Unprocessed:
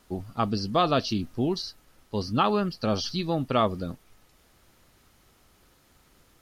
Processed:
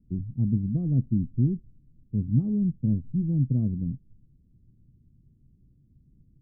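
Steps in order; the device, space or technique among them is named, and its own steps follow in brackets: the neighbour's flat through the wall (low-pass 240 Hz 24 dB/octave; peaking EQ 130 Hz +8 dB 0.59 oct); trim +3.5 dB

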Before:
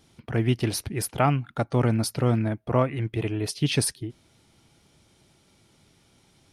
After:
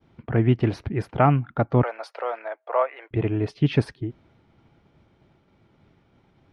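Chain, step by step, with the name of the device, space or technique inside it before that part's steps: 1.83–3.11 s: steep high-pass 530 Hz 36 dB/octave; hearing-loss simulation (low-pass 1.8 kHz 12 dB/octave; expander -59 dBFS); trim +4 dB

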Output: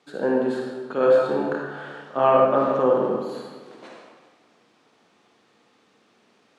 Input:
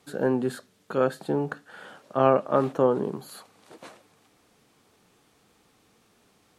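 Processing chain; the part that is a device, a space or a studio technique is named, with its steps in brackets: supermarket ceiling speaker (band-pass 230–5100 Hz; reverberation RT60 1.5 s, pre-delay 43 ms, DRR -1 dB); 1.00–2.45 s: doubling 29 ms -3 dB

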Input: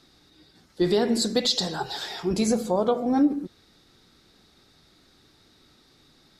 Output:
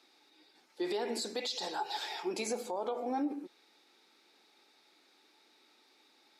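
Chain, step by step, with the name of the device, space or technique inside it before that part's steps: laptop speaker (high-pass 300 Hz 24 dB/octave; peaking EQ 860 Hz +10 dB 0.2 oct; peaking EQ 2.4 kHz +8.5 dB 0.39 oct; peak limiter -19 dBFS, peak gain reduction 8.5 dB); trim -7.5 dB

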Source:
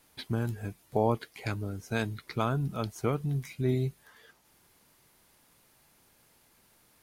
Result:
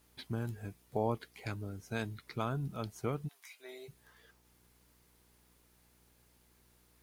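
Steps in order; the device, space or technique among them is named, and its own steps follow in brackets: video cassette with head-switching buzz (mains buzz 60 Hz, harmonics 8, -64 dBFS -5 dB/octave; white noise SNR 37 dB); 3.27–3.88 s: high-pass 1 kHz -> 430 Hz 24 dB/octave; trim -6.5 dB

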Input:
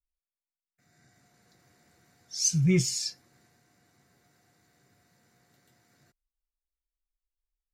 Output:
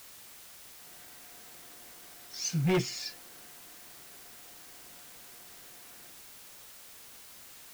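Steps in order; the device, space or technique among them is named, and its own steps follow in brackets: aircraft radio (band-pass 300–2400 Hz; hard clipper -31 dBFS, distortion -7 dB; white noise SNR 11 dB); trim +8 dB

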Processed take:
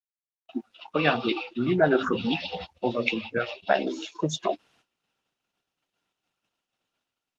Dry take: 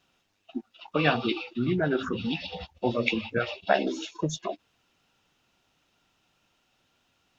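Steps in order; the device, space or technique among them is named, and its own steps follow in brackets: 1.26–2.55 s: dynamic bell 770 Hz, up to +7 dB, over -43 dBFS, Q 1.1; video call (high-pass 180 Hz 6 dB/octave; level rider gain up to 13.5 dB; gate -54 dBFS, range -39 dB; trim -5.5 dB; Opus 32 kbps 48 kHz)

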